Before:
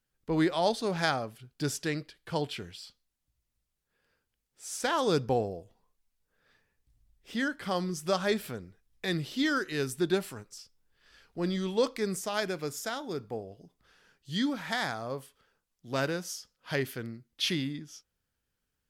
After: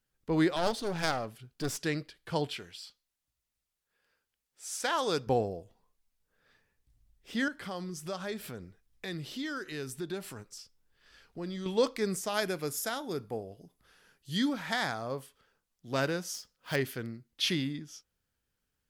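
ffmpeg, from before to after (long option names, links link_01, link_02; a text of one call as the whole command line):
ffmpeg -i in.wav -filter_complex "[0:a]asettb=1/sr,asplit=3[link_01][link_02][link_03];[link_01]atrim=end=0.564[link_04];[link_02]atrim=start=0.56:end=1.83,asetpts=PTS-STARTPTS,afade=type=in:duration=0.004:curve=qsin,afade=type=out:start_time=1.266:duration=0.004:curve=qsin,aeval=exprs='clip(val(0),-1,0.0141)':channel_layout=same[link_05];[link_03]atrim=start=1.826[link_06];[link_04][link_05]acrossfade=duration=0.004:curve1=hsin:curve2=qsin[link_07];[link_07][link_06]acrossfade=duration=0.004:curve1=qsin:curve2=hsin,asettb=1/sr,asplit=3[link_08][link_09][link_10];[link_08]atrim=end=2.574[link_11];[link_09]atrim=start=2.57:end=5.27,asetpts=PTS-STARTPTS,afade=type=in:duration=0.004:curve=qsin,afade=type=out:start_time=2.696:duration=0.004:curve=qsin,lowshelf=frequency=350:gain=-10.5[link_12];[link_10]atrim=start=5.266[link_13];[link_11][link_12]acrossfade=duration=0.004:curve1=hsin:curve2=qsin[link_14];[link_14][link_13]acrossfade=duration=0.004:curve1=qsin:curve2=hsin,asettb=1/sr,asplit=3[link_15][link_16][link_17];[link_15]atrim=end=7.484[link_18];[link_16]atrim=start=7.48:end=11.66,asetpts=PTS-STARTPTS,afade=type=in:duration=0.004:curve=qsin,afade=type=out:start_time=4.176:duration=0.004:curve=qsin,acompressor=threshold=-40dB:ratio=2:attack=3.2:release=140:knee=1:detection=peak[link_19];[link_17]atrim=start=11.656[link_20];[link_18][link_19]acrossfade=duration=0.004:curve1=hsin:curve2=qsin[link_21];[link_21][link_20]acrossfade=duration=0.004:curve1=qsin:curve2=hsin,asettb=1/sr,asplit=3[link_22][link_23][link_24];[link_22]atrim=end=12.294[link_25];[link_23]atrim=start=12.29:end=14.49,asetpts=PTS-STARTPTS,afade=type=in:duration=0.004:curve=qsin,afade=type=out:start_time=2.196:duration=0.004:curve=qsin,equalizer=frequency=11000:width=2.1:gain=10.5[link_26];[link_24]atrim=start=14.486[link_27];[link_25][link_26]acrossfade=duration=0.004:curve1=hsin:curve2=qsin[link_28];[link_28][link_27]acrossfade=duration=0.004:curve1=qsin:curve2=hsin,asettb=1/sr,asplit=3[link_29][link_30][link_31];[link_29]atrim=end=16.344[link_32];[link_30]atrim=start=16.34:end=16.76,asetpts=PTS-STARTPTS,afade=type=in:duration=0.004:curve=qsin,afade=type=out:start_time=0.416:duration=0.004:curve=qsin,acrusher=bits=3:mode=log:mix=0:aa=0.000001[link_33];[link_31]atrim=start=16.756[link_34];[link_32][link_33]acrossfade=duration=0.004:curve1=hsin:curve2=qsin[link_35];[link_35][link_34]acrossfade=duration=0.004:curve1=qsin:curve2=hsin" out.wav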